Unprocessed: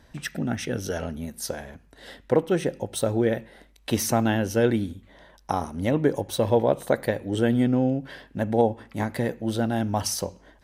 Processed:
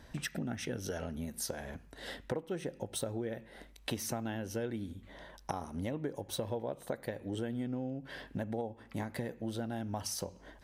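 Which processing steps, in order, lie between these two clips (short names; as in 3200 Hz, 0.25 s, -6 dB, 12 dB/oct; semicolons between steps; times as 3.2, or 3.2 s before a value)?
compressor 6:1, threshold -35 dBFS, peak gain reduction 19 dB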